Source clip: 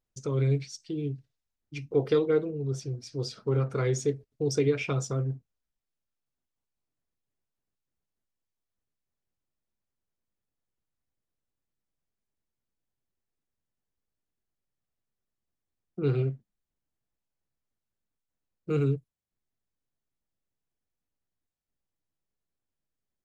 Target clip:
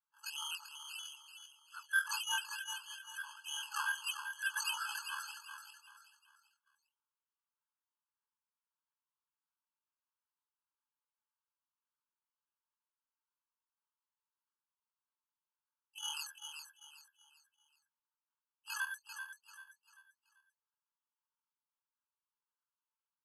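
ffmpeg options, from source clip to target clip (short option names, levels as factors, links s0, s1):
-af "afftfilt=real='re':imag='-im':win_size=2048:overlap=0.75,firequalizer=gain_entry='entry(410,0);entry(3800,-18);entry(8500,-26)':delay=0.05:min_phase=1,acrusher=samples=11:mix=1:aa=0.000001:lfo=1:lforange=6.6:lforate=1.6,highshelf=f=2600:g=-7.5,aecho=1:1:389|778|1167|1556:0.398|0.143|0.0516|0.0186,asetrate=25476,aresample=44100,atempo=1.73107,afftfilt=real='re*eq(mod(floor(b*sr/1024/850),2),1)':imag='im*eq(mod(floor(b*sr/1024/850),2),1)':win_size=1024:overlap=0.75,volume=7.08"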